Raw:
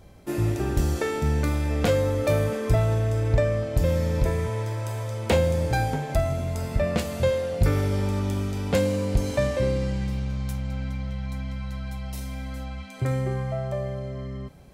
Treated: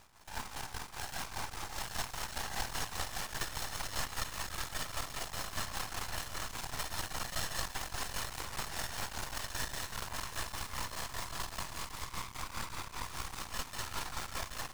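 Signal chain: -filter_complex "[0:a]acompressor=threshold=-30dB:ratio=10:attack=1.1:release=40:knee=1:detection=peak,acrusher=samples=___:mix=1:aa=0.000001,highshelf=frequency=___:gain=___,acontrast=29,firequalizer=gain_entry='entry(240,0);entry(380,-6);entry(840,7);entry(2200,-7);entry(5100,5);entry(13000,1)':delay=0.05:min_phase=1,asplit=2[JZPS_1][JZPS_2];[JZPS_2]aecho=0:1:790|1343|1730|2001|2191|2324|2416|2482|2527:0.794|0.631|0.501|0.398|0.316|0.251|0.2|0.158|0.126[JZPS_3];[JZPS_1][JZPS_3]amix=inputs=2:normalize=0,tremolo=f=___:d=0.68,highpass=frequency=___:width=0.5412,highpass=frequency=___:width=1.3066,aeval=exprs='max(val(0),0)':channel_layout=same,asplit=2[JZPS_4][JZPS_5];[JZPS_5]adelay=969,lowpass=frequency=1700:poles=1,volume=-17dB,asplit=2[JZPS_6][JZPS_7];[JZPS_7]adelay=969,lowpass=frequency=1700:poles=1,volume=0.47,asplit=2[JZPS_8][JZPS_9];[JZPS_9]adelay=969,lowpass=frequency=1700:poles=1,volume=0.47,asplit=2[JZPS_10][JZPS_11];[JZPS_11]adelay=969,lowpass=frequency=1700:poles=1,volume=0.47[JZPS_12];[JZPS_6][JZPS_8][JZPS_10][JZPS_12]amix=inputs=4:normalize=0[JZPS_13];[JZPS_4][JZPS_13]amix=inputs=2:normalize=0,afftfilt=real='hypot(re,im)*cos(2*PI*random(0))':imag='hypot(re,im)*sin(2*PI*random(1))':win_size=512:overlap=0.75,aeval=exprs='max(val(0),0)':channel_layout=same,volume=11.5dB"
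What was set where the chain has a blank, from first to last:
37, 8600, -5, 5, 980, 980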